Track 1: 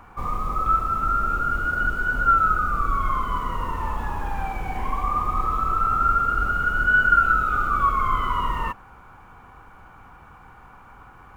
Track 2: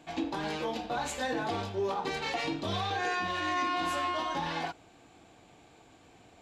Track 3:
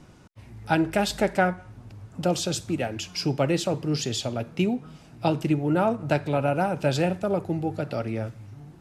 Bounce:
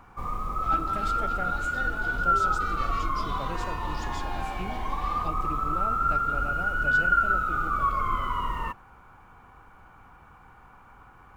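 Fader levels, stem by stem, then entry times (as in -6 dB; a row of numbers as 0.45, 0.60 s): -5.0, -8.5, -15.5 dB; 0.00, 0.55, 0.00 s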